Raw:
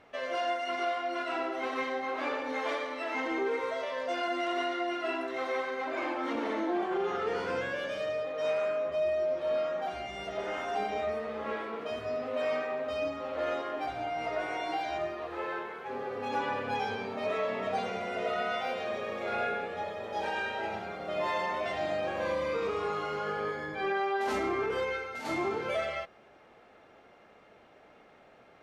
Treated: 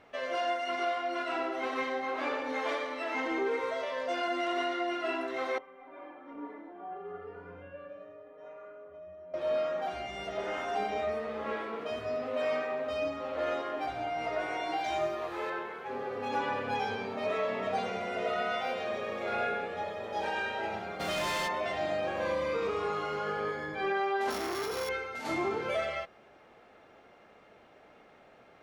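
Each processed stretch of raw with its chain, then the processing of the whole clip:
0:05.58–0:09.34: low-pass filter 1,500 Hz + stiff-string resonator 86 Hz, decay 0.43 s, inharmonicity 0.03
0:14.84–0:15.50: high-shelf EQ 5,100 Hz +9.5 dB + double-tracking delay 18 ms −4.5 dB
0:20.99–0:21.47: spectral envelope flattened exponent 0.6 + hard clipping −33 dBFS + envelope flattener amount 50%
0:24.30–0:24.89: samples sorted by size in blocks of 8 samples + saturating transformer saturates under 1,400 Hz
whole clip: no processing

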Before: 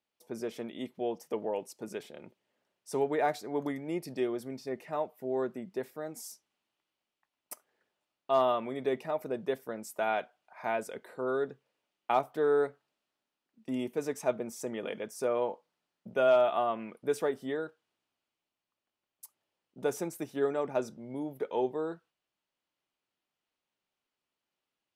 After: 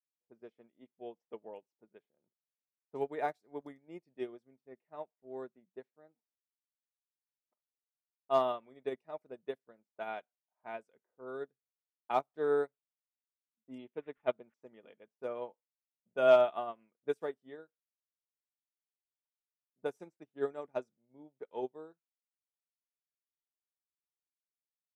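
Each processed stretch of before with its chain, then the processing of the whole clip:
0:13.78–0:14.54: phase distortion by the signal itself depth 0.056 ms + high shelf with overshoot 6,800 Hz −7.5 dB, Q 3 + bad sample-rate conversion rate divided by 6×, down none, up filtered
whole clip: low-pass that shuts in the quiet parts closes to 560 Hz, open at −28 dBFS; expander for the loud parts 2.5 to 1, over −45 dBFS; level +2.5 dB

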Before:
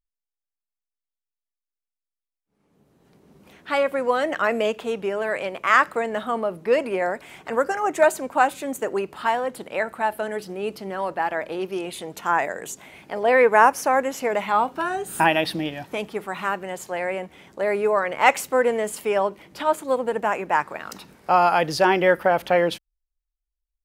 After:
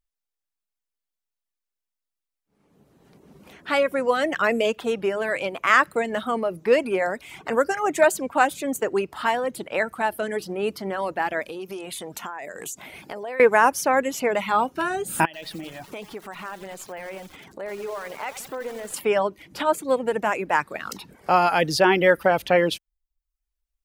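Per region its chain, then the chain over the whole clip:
0:11.42–0:13.40: high-shelf EQ 5,500 Hz +7.5 dB + downward compressor 8 to 1, threshold −33 dBFS
0:15.25–0:18.94: downward compressor 2.5 to 1, threshold −40 dBFS + feedback echo at a low word length 87 ms, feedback 80%, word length 7 bits, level −7 dB
whole clip: reverb reduction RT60 0.51 s; dynamic equaliser 870 Hz, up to −5 dB, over −32 dBFS, Q 0.92; boost into a limiter +7.5 dB; level −4 dB

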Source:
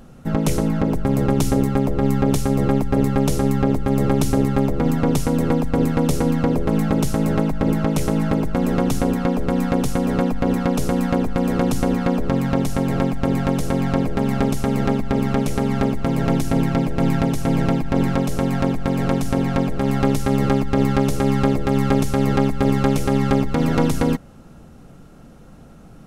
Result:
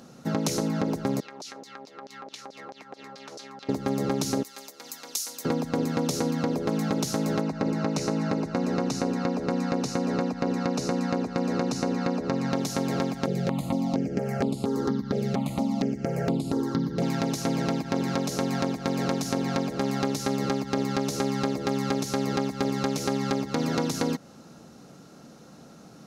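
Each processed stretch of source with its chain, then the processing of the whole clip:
0:01.20–0:03.69: auto-filter band-pass saw down 4.6 Hz 610–5,400 Hz + downward compressor, threshold −36 dBFS
0:04.43–0:05.45: high-pass filter 230 Hz 6 dB per octave + first difference
0:07.41–0:12.53: high-frequency loss of the air 59 metres + notch filter 3,300 Hz, Q 6.2
0:13.26–0:17.02: tilt shelving filter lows +4.5 dB, about 850 Hz + step-sequenced phaser 4.3 Hz 270–5,900 Hz
whole clip: high-pass filter 180 Hz 12 dB per octave; flat-topped bell 5,100 Hz +8.5 dB 1 octave; downward compressor, threshold −21 dBFS; level −1.5 dB

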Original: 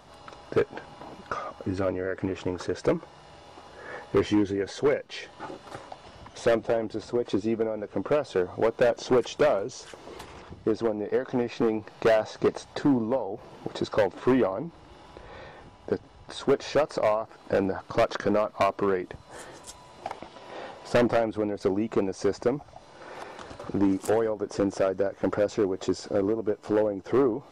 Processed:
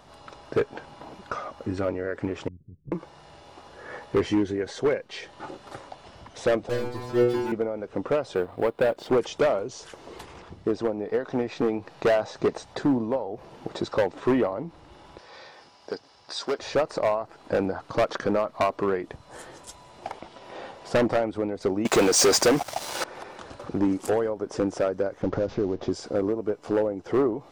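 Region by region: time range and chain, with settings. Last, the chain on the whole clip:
0:02.48–0:02.92: inverse Chebyshev low-pass filter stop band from 820 Hz, stop band 70 dB + output level in coarse steps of 11 dB
0:06.69–0:07.52: tilt shelving filter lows +8 dB, about 1,300 Hz + leveller curve on the samples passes 5 + stiff-string resonator 120 Hz, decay 0.73 s, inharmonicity 0.002
0:08.35–0:09.11: mu-law and A-law mismatch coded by A + parametric band 6,100 Hz −12 dB 0.37 octaves
0:15.18–0:16.59: high-pass filter 640 Hz 6 dB per octave + parametric band 5,000 Hz +12.5 dB 0.53 octaves
0:21.85–0:23.04: RIAA equalisation recording + leveller curve on the samples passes 5
0:25.22–0:25.92: variable-slope delta modulation 32 kbit/s + spectral tilt −2.5 dB per octave + downward compressor 2.5 to 1, threshold −22 dBFS
whole clip: no processing

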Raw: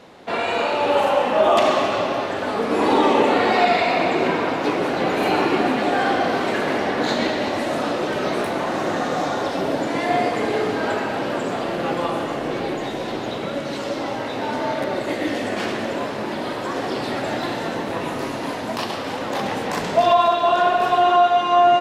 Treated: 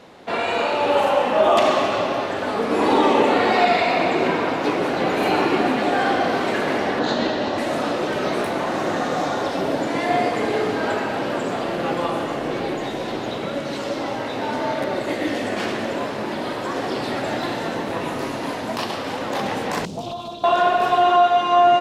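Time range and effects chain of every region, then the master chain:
0:06.99–0:07.58: low-pass filter 5,900 Hz + parametric band 2,200 Hz −9 dB 0.25 octaves
0:19.85–0:20.44: drawn EQ curve 190 Hz 0 dB, 1,900 Hz −28 dB, 3,200 Hz −11 dB, 5,500 Hz −4 dB + highs frequency-modulated by the lows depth 0.38 ms
whole clip: no processing

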